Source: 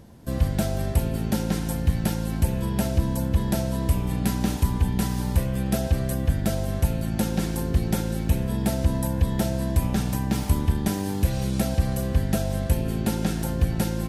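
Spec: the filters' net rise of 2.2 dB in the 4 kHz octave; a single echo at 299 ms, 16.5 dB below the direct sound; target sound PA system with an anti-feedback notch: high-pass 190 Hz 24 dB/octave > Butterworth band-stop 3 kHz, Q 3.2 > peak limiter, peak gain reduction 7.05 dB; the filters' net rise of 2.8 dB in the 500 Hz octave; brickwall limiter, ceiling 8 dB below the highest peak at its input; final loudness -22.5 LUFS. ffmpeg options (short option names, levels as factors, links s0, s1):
-af "equalizer=f=500:t=o:g=3.5,equalizer=f=4000:t=o:g=5,alimiter=limit=0.141:level=0:latency=1,highpass=f=190:w=0.5412,highpass=f=190:w=1.3066,asuperstop=centerf=3000:order=8:qfactor=3.2,aecho=1:1:299:0.15,volume=3.35,alimiter=limit=0.224:level=0:latency=1"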